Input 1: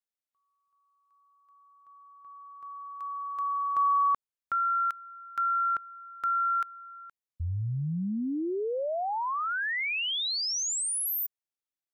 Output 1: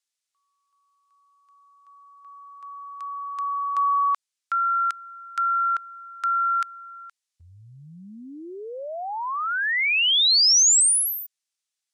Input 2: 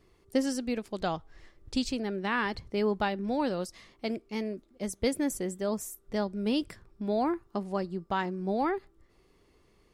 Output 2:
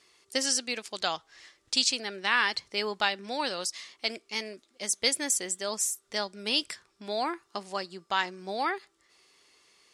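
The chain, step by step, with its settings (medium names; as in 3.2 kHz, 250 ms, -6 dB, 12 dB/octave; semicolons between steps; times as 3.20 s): frequency weighting ITU-R 468; trim +2 dB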